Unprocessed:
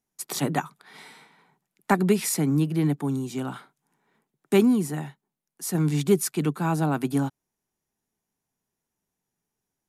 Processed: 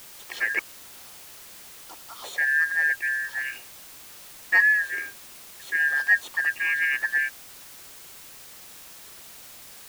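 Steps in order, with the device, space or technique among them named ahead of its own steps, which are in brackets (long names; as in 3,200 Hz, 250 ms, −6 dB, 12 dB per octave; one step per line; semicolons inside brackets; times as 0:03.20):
0:00.59–0:02.24: Butterworth high-pass 2,600 Hz
split-band scrambled radio (band-splitting scrambler in four parts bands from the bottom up 2143; band-pass filter 390–3,100 Hz; white noise bed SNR 17 dB)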